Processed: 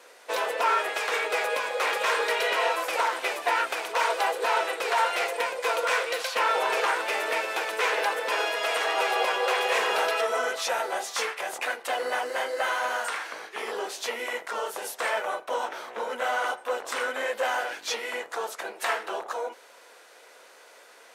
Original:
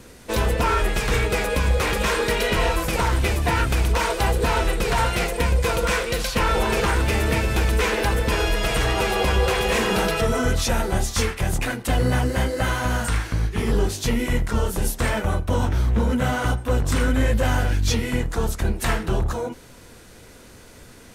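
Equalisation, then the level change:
high-pass filter 520 Hz 24 dB per octave
high-shelf EQ 4,500 Hz −9 dB
0.0 dB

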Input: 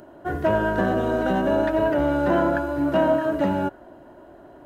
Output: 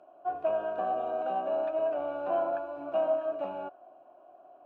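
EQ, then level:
formant filter a
0.0 dB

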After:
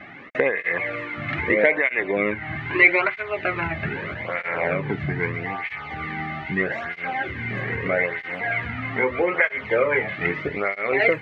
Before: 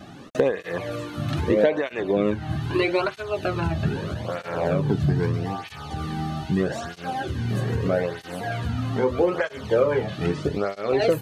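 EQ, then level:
low-pass with resonance 2,100 Hz, resonance Q 13
low-shelf EQ 240 Hz −9 dB
0.0 dB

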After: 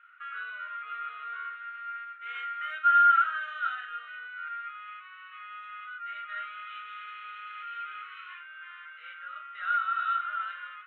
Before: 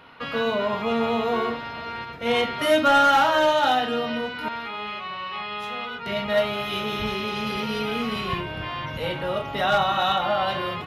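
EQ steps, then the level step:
four-pole ladder high-pass 1,300 Hz, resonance 85%
low-pass filter 3,200 Hz 12 dB per octave
phaser with its sweep stopped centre 2,100 Hz, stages 4
−2.5 dB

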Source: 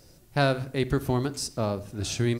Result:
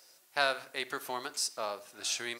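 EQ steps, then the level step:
high-pass filter 890 Hz 12 dB per octave
0.0 dB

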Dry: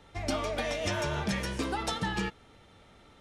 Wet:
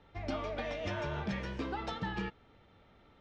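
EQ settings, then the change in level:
high-frequency loss of the air 200 metres
−4.5 dB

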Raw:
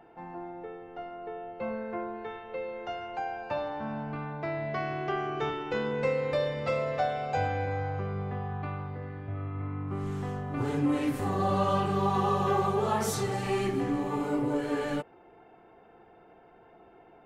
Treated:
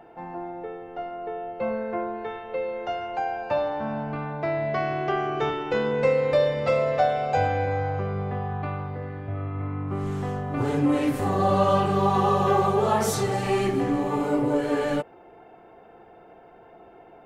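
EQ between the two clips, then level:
parametric band 600 Hz +4 dB 0.68 octaves
+4.5 dB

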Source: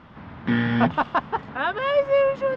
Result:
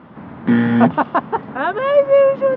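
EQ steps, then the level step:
band-pass filter 250–4,600 Hz
spectral tilt −3.5 dB per octave
+5.0 dB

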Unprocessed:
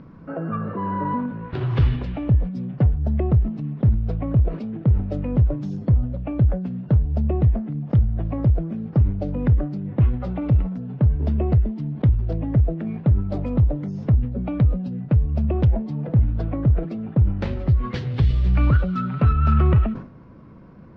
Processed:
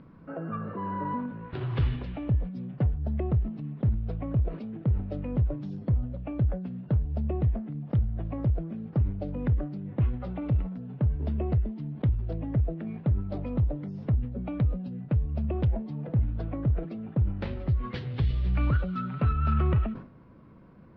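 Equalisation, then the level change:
high-frequency loss of the air 430 metres
bass and treble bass −2 dB, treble +13 dB
high-shelf EQ 2,400 Hz +8.5 dB
−6.0 dB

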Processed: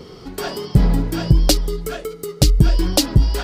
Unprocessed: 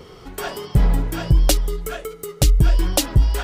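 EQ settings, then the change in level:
parametric band 230 Hz +8 dB 2 octaves
parametric band 4,700 Hz +8.5 dB 0.56 octaves
−1.0 dB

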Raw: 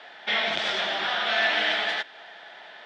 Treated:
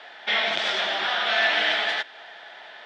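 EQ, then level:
low-shelf EQ 170 Hz −10.5 dB
+2.0 dB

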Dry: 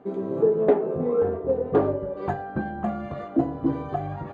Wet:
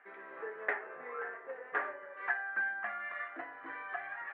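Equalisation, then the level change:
high-pass with resonance 1,800 Hz, resonance Q 4.4
low-pass filter 2,400 Hz 24 dB per octave
0.0 dB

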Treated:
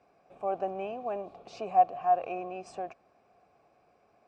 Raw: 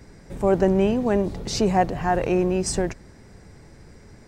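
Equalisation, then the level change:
formant filter a
parametric band 1,800 Hz +4 dB 0.28 octaves
0.0 dB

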